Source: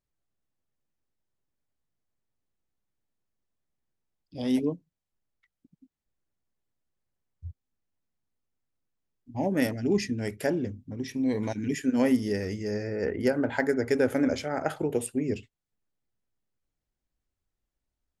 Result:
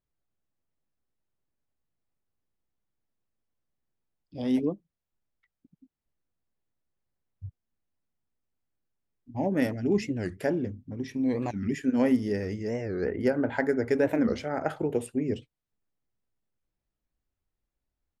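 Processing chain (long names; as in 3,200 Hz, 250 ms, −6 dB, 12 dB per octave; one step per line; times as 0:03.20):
high-shelf EQ 4,000 Hz −10 dB
wow of a warped record 45 rpm, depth 250 cents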